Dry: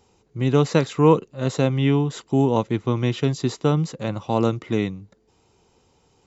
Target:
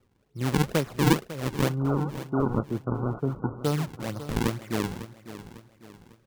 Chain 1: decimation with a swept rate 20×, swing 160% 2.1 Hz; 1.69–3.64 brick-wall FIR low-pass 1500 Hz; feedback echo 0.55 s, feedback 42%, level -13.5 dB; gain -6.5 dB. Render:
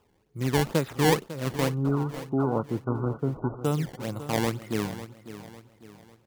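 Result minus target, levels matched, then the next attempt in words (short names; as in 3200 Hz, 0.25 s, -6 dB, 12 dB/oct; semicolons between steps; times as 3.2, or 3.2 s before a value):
decimation with a swept rate: distortion -7 dB
decimation with a swept rate 41×, swing 160% 2.1 Hz; 1.69–3.64 brick-wall FIR low-pass 1500 Hz; feedback echo 0.55 s, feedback 42%, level -13.5 dB; gain -6.5 dB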